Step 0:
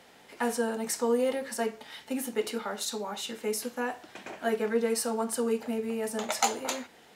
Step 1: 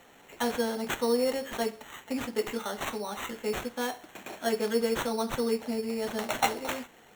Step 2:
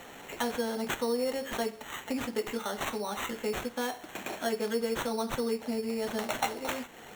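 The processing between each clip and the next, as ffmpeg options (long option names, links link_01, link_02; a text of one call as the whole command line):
ffmpeg -i in.wav -af "acrusher=samples=9:mix=1:aa=0.000001" out.wav
ffmpeg -i in.wav -af "acompressor=threshold=-46dB:ratio=2,volume=8.5dB" out.wav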